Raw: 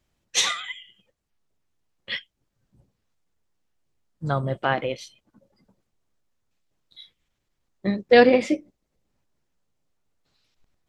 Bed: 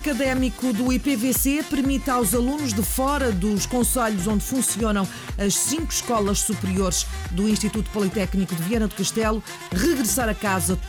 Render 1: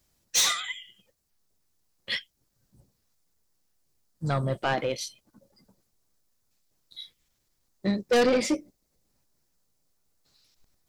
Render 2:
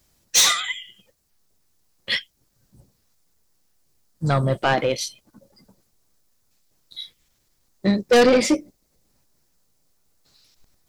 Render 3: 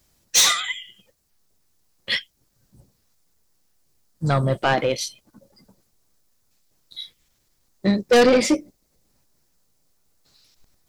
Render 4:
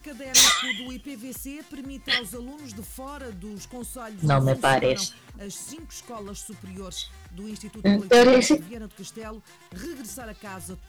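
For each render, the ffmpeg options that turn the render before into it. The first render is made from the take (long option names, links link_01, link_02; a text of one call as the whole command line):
ffmpeg -i in.wav -af "aexciter=amount=2.4:drive=6.8:freq=4200,asoftclip=type=tanh:threshold=-18dB" out.wav
ffmpeg -i in.wav -af "volume=7dB" out.wav
ffmpeg -i in.wav -af anull out.wav
ffmpeg -i in.wav -i bed.wav -filter_complex "[1:a]volume=-16dB[link_01];[0:a][link_01]amix=inputs=2:normalize=0" out.wav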